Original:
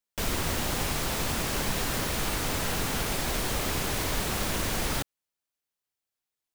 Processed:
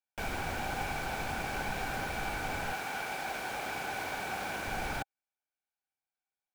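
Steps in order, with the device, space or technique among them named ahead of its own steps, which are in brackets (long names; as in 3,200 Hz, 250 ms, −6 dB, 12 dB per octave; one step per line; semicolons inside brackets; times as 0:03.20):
inside a helmet (high-shelf EQ 4,400 Hz −7.5 dB; hollow resonant body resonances 790/1,500/2,300 Hz, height 14 dB, ringing for 25 ms)
0:02.72–0:04.66: high-pass filter 490 Hz → 210 Hz 6 dB per octave
level −8.5 dB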